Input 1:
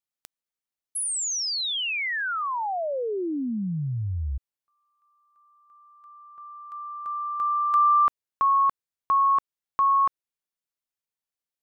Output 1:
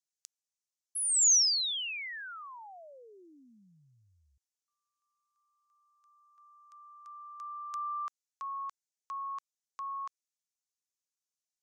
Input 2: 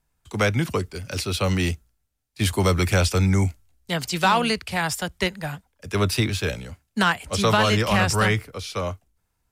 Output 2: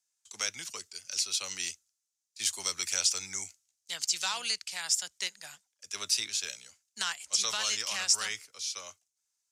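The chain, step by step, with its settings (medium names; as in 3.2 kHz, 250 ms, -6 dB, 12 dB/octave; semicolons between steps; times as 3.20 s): band-pass filter 6.4 kHz, Q 2.6; trim +6 dB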